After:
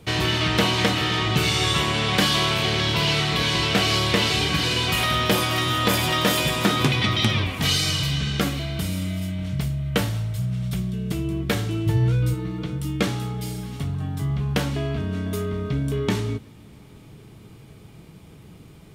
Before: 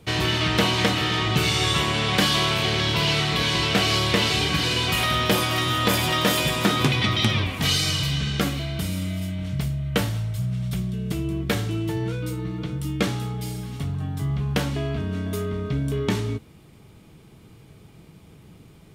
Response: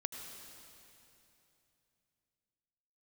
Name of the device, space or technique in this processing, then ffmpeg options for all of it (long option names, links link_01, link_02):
compressed reverb return: -filter_complex "[0:a]asplit=2[link_01][link_02];[1:a]atrim=start_sample=2205[link_03];[link_02][link_03]afir=irnorm=-1:irlink=0,acompressor=threshold=-37dB:ratio=6,volume=-8dB[link_04];[link_01][link_04]amix=inputs=2:normalize=0,asettb=1/sr,asplit=3[link_05][link_06][link_07];[link_05]atrim=end=11.864[link_08];[link_06]atrim=start=11.86:end=12.34,asetpts=PTS-STARTPTS,afade=type=in:duration=0.004:curve=qsin,afade=type=out:start_time=0.476:duration=0.004:curve=qsin,lowshelf=frequency=160:width_type=q:width=1.5:gain=8[link_09];[link_07]atrim=start=12.336[link_10];[link_08][link_09]acrossfade=duration=0.004:curve1=hsin:curve2=qsin[link_11];[link_11][link_10]acrossfade=duration=0.004:curve1=qsin:curve2=hsin"